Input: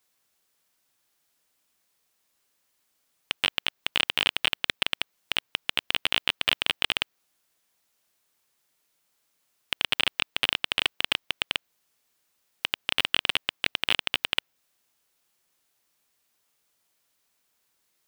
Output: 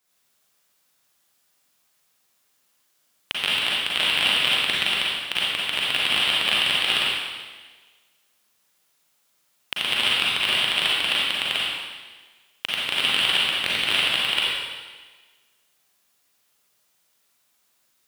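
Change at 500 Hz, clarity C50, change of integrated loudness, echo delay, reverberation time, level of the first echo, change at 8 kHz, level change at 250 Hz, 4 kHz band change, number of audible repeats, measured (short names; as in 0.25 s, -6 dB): +5.0 dB, -3.5 dB, +6.0 dB, none, 1.4 s, none, +6.0 dB, +5.0 dB, +6.5 dB, none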